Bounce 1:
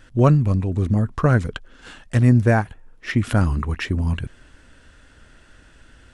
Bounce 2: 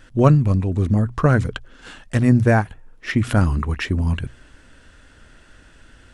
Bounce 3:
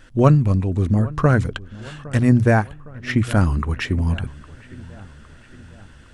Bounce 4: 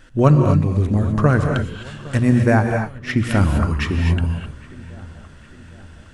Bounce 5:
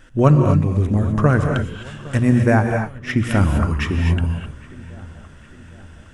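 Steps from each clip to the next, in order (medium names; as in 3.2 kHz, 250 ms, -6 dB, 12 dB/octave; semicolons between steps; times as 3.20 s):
hum notches 60/120 Hz; trim +1.5 dB
feedback echo behind a low-pass 810 ms, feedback 52%, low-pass 2.1 kHz, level -20 dB
gated-style reverb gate 280 ms rising, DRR 3.5 dB
peaking EQ 4.3 kHz -8 dB 0.24 oct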